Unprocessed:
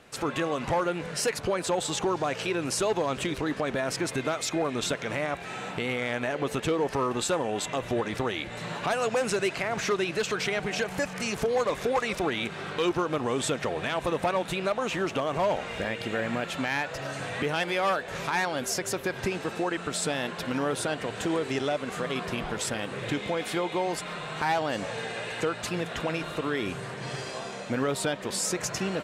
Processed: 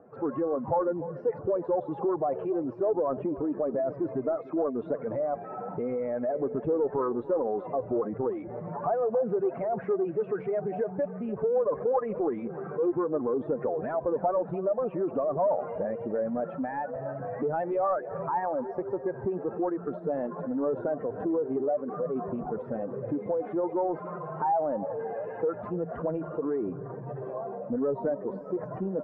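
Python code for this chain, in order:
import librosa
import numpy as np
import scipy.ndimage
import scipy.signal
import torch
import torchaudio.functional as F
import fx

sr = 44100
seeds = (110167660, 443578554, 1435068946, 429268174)

p1 = fx.spec_expand(x, sr, power=2.1)
p2 = fx.highpass(p1, sr, hz=270.0, slope=6)
p3 = np.clip(10.0 ** (29.0 / 20.0) * p2, -1.0, 1.0) / 10.0 ** (29.0 / 20.0)
p4 = p2 + (p3 * librosa.db_to_amplitude(-8.5))
p5 = scipy.signal.sosfilt(scipy.signal.butter(4, 1100.0, 'lowpass', fs=sr, output='sos'), p4)
p6 = p5 + fx.echo_feedback(p5, sr, ms=295, feedback_pct=54, wet_db=-17, dry=0)
y = fx.doppler_dist(p6, sr, depth_ms=0.11)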